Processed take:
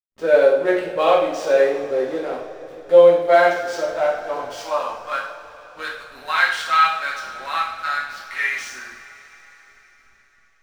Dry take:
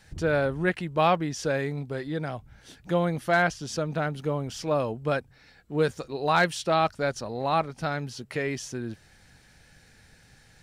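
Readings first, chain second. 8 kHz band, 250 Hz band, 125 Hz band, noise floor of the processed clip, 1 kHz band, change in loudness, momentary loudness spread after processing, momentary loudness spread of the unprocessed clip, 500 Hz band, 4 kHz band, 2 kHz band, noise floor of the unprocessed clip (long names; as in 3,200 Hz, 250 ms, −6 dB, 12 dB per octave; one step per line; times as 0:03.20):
+1.0 dB, −1.5 dB, −15.0 dB, −57 dBFS, +6.5 dB, +8.5 dB, 17 LU, 10 LU, +10.5 dB, +6.0 dB, +7.5 dB, −57 dBFS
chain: high-pass filter sweep 480 Hz → 1,500 Hz, 0:03.50–0:05.57
dynamic equaliser 3,400 Hz, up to +4 dB, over −38 dBFS, Q 1
in parallel at −2 dB: downward compressor, threshold −32 dBFS, peak gain reduction 18 dB
on the sum: harmonic and percussive parts rebalanced harmonic +7 dB
slack as between gear wheels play −29 dBFS
coupled-rooms reverb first 0.59 s, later 4.6 s, from −18 dB, DRR −5 dB
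level −8 dB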